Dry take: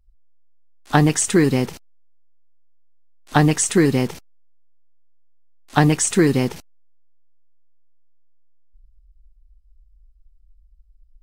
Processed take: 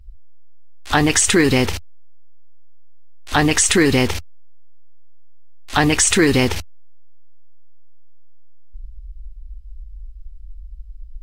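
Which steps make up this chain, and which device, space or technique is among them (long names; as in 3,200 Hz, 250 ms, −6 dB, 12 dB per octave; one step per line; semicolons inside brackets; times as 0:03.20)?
car stereo with a boomy subwoofer (low shelf with overshoot 110 Hz +9 dB, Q 3; brickwall limiter −14.5 dBFS, peak gain reduction 11.5 dB)
parametric band 2,800 Hz +7 dB 2.2 octaves
level +7.5 dB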